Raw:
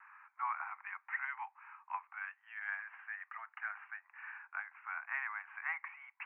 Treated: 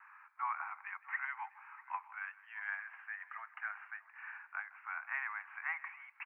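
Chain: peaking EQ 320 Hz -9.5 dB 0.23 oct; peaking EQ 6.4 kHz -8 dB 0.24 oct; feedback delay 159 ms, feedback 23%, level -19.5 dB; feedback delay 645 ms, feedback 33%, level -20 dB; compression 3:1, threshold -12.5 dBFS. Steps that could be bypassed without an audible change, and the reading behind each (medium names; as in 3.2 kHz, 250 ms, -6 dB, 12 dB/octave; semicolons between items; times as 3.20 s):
peaking EQ 320 Hz: input has nothing below 640 Hz; peaking EQ 6.4 kHz: input has nothing above 2.9 kHz; compression, threshold -12.5 dBFS: peak at its input -24.5 dBFS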